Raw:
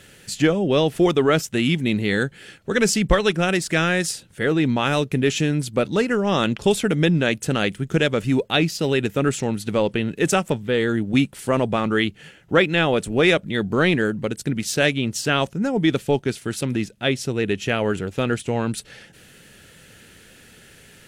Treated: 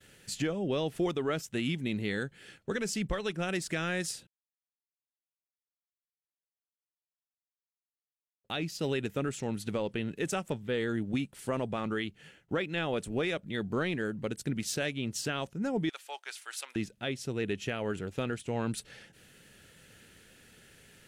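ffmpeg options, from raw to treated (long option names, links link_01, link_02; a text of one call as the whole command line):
ffmpeg -i in.wav -filter_complex "[0:a]asettb=1/sr,asplit=3[link_01][link_02][link_03];[link_01]atrim=end=15.894[link_04];[link_02]atrim=start=15.89:end=16.76,asetpts=PTS-STARTPTS,afade=type=in:duration=0.004:curve=qsin,afade=type=out:start_time=0.866:duration=0.004:curve=qsin,highpass=frequency=810:width=0.5412,highpass=frequency=810:width=1.3066[link_05];[link_03]atrim=start=16.756[link_06];[link_04][link_05]acrossfade=duration=0.004:curve1=hsin:curve2=qsin[link_07];[link_07][link_06]acrossfade=duration=0.004:curve1=qsin:curve2=hsin,asplit=3[link_08][link_09][link_10];[link_08]atrim=end=4.27,asetpts=PTS-STARTPTS,afade=type=out:start_time=4.266:duration=0.004:curve=hsin[link_11];[link_09]atrim=start=4.27:end=8.44,asetpts=PTS-STARTPTS,volume=0[link_12];[link_10]atrim=start=8.44,asetpts=PTS-STARTPTS,afade=type=in:duration=0.004:curve=hsin[link_13];[link_11][link_12][link_13]concat=n=3:v=0:a=1,agate=range=-33dB:threshold=-46dB:ratio=3:detection=peak,alimiter=limit=-14dB:level=0:latency=1:release=397,volume=-8dB" out.wav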